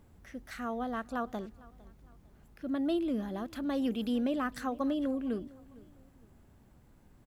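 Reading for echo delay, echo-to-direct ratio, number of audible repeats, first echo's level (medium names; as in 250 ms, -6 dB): 455 ms, -21.5 dB, 2, -22.0 dB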